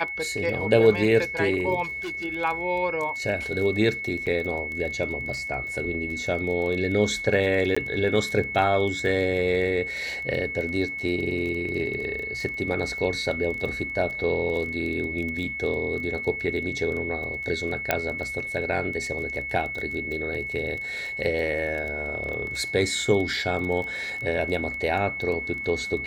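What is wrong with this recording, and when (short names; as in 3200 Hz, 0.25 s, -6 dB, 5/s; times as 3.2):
crackle 19/s -31 dBFS
tone 2200 Hz -30 dBFS
1.83–2.25 clipped -29 dBFS
4.26–4.27 gap 7.2 ms
7.75–7.76 gap 15 ms
17.91 pop -6 dBFS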